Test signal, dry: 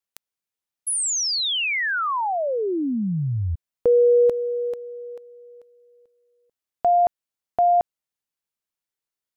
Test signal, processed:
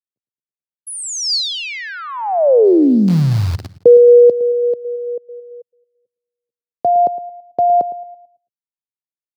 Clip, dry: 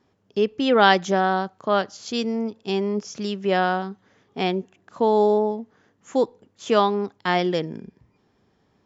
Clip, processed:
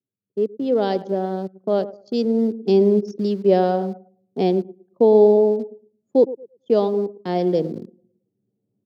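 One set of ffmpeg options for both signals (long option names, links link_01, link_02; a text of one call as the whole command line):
ffmpeg -i in.wav -filter_complex "[0:a]asplit=2[link_01][link_02];[link_02]aecho=0:1:111|222|333|444|555|666:0.2|0.11|0.0604|0.0332|0.0183|0.01[link_03];[link_01][link_03]amix=inputs=2:normalize=0,dynaudnorm=framelen=190:gausssize=7:maxgain=16dB,anlmdn=1000,lowshelf=frequency=800:width_type=q:width=1.5:gain=14,acrossover=split=110[link_04][link_05];[link_04]acrusher=bits=3:dc=4:mix=0:aa=0.000001[link_06];[link_06][link_05]amix=inputs=2:normalize=0,highpass=frequency=86:width=0.5412,highpass=frequency=86:width=1.3066,equalizer=frequency=4600:width=2.3:gain=10.5,volume=-17dB" out.wav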